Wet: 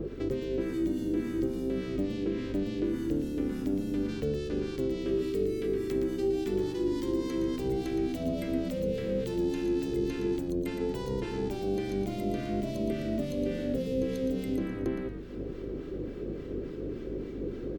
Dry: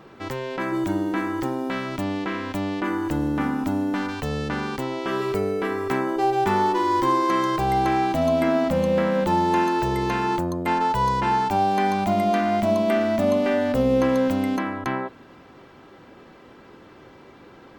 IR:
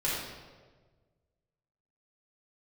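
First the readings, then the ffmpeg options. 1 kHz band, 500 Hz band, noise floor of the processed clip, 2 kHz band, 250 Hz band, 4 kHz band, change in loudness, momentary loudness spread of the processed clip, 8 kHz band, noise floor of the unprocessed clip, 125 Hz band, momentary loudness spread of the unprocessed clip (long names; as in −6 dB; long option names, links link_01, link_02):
−25.0 dB, −7.0 dB, −39 dBFS, −16.5 dB, −6.0 dB, −10.0 dB, −9.0 dB, 7 LU, −8.5 dB, −48 dBFS, −6.5 dB, 7 LU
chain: -filter_complex "[0:a]lowshelf=frequency=610:width_type=q:width=3:gain=12.5,acrossover=split=350|2500[link_01][link_02][link_03];[link_01]acompressor=threshold=-38dB:ratio=4[link_04];[link_02]acompressor=threshold=-35dB:ratio=4[link_05];[link_03]acompressor=threshold=-46dB:ratio=4[link_06];[link_04][link_05][link_06]amix=inputs=3:normalize=0,aeval=exprs='val(0)+0.01*(sin(2*PI*50*n/s)+sin(2*PI*2*50*n/s)/2+sin(2*PI*3*50*n/s)/3+sin(2*PI*4*50*n/s)/4+sin(2*PI*5*50*n/s)/5)':channel_layout=same,acrossover=split=850[link_07][link_08];[link_07]aeval=exprs='val(0)*(1-0.7/2+0.7/2*cos(2*PI*3.5*n/s))':channel_layout=same[link_09];[link_08]aeval=exprs='val(0)*(1-0.7/2-0.7/2*cos(2*PI*3.5*n/s))':channel_layout=same[link_10];[link_09][link_10]amix=inputs=2:normalize=0,asplit=5[link_11][link_12][link_13][link_14][link_15];[link_12]adelay=116,afreqshift=-74,volume=-7.5dB[link_16];[link_13]adelay=232,afreqshift=-148,volume=-18dB[link_17];[link_14]adelay=348,afreqshift=-222,volume=-28.4dB[link_18];[link_15]adelay=464,afreqshift=-296,volume=-38.9dB[link_19];[link_11][link_16][link_17][link_18][link_19]amix=inputs=5:normalize=0"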